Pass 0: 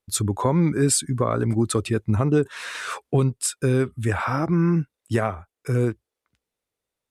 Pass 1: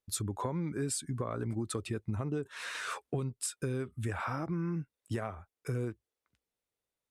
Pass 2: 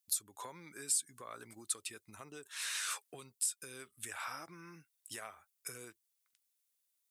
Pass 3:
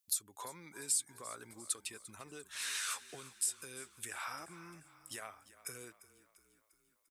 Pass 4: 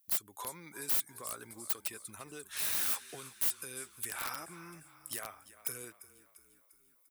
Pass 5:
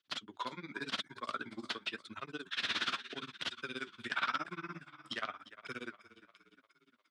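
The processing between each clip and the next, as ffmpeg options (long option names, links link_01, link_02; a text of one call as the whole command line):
ffmpeg -i in.wav -af "acompressor=threshold=-26dB:ratio=4,volume=-6.5dB" out.wav
ffmpeg -i in.wav -af "aderivative,alimiter=level_in=6dB:limit=-24dB:level=0:latency=1:release=335,volume=-6dB,volume=9dB" out.wav
ffmpeg -i in.wav -filter_complex "[0:a]asplit=6[link_01][link_02][link_03][link_04][link_05][link_06];[link_02]adelay=347,afreqshift=-30,volume=-17dB[link_07];[link_03]adelay=694,afreqshift=-60,volume=-22.4dB[link_08];[link_04]adelay=1041,afreqshift=-90,volume=-27.7dB[link_09];[link_05]adelay=1388,afreqshift=-120,volume=-33.1dB[link_10];[link_06]adelay=1735,afreqshift=-150,volume=-38.4dB[link_11];[link_01][link_07][link_08][link_09][link_10][link_11]amix=inputs=6:normalize=0" out.wav
ffmpeg -i in.wav -filter_complex "[0:a]asplit=2[link_01][link_02];[link_02]alimiter=level_in=8.5dB:limit=-24dB:level=0:latency=1:release=13,volume=-8.5dB,volume=-1dB[link_03];[link_01][link_03]amix=inputs=2:normalize=0,aeval=exprs='(mod(26.6*val(0)+1,2)-1)/26.6':channel_layout=same,aexciter=amount=2.8:drive=3.8:freq=9900,volume=-3dB" out.wav
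ffmpeg -i in.wav -af "tremolo=f=17:d=1,flanger=delay=1.9:depth=7.5:regen=-67:speed=0.89:shape=sinusoidal,highpass=frequency=110:width=0.5412,highpass=frequency=110:width=1.3066,equalizer=frequency=120:width_type=q:width=4:gain=-6,equalizer=frequency=250:width_type=q:width=4:gain=5,equalizer=frequency=490:width_type=q:width=4:gain=-5,equalizer=frequency=810:width_type=q:width=4:gain=-6,equalizer=frequency=1400:width_type=q:width=4:gain=5,equalizer=frequency=3300:width_type=q:width=4:gain=7,lowpass=frequency=4300:width=0.5412,lowpass=frequency=4300:width=1.3066,volume=13dB" out.wav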